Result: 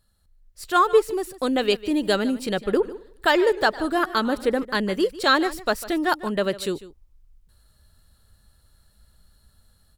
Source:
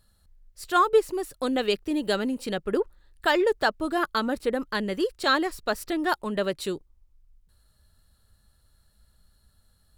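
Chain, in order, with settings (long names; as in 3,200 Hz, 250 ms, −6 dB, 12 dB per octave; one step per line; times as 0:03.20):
automatic gain control gain up to 8 dB
single-tap delay 149 ms −17 dB
0:02.50–0:04.65: feedback echo with a swinging delay time 103 ms, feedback 43%, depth 124 cents, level −20 dB
level −3.5 dB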